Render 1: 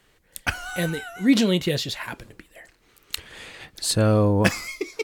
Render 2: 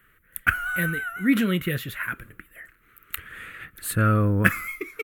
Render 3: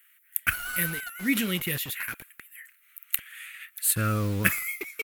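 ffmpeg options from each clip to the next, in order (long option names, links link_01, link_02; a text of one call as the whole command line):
ffmpeg -i in.wav -af "firequalizer=gain_entry='entry(120,0);entry(870,-15);entry(1300,9);entry(4800,-21);entry(12000,7)':delay=0.05:min_phase=1" out.wav
ffmpeg -i in.wav -filter_complex "[0:a]acrossover=split=1200[link_01][link_02];[link_01]acrusher=bits=5:mix=0:aa=0.000001[link_03];[link_02]aexciter=amount=2.9:drive=5.9:freq=2100[link_04];[link_03][link_04]amix=inputs=2:normalize=0,volume=-6.5dB" out.wav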